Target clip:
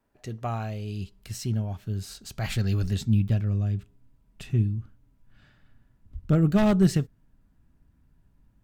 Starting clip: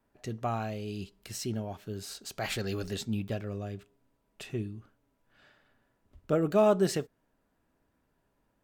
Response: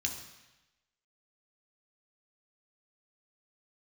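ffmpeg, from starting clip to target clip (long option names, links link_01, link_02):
-af "aeval=exprs='0.188*(cos(1*acos(clip(val(0)/0.188,-1,1)))-cos(1*PI/2))+0.0335*(cos(3*acos(clip(val(0)/0.188,-1,1)))-cos(3*PI/2))+0.0015*(cos(5*acos(clip(val(0)/0.188,-1,1)))-cos(5*PI/2))':channel_layout=same,aeval=exprs='0.211*sin(PI/2*1.78*val(0)/0.211)':channel_layout=same,asubboost=boost=9.5:cutoff=160,volume=-3dB"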